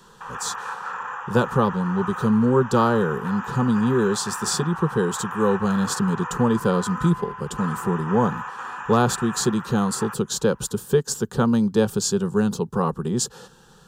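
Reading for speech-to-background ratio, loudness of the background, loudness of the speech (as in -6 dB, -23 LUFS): 10.0 dB, -32.5 LUFS, -22.5 LUFS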